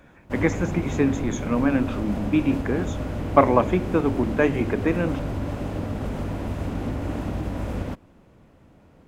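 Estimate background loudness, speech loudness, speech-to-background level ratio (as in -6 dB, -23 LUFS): -30.0 LUFS, -24.0 LUFS, 6.0 dB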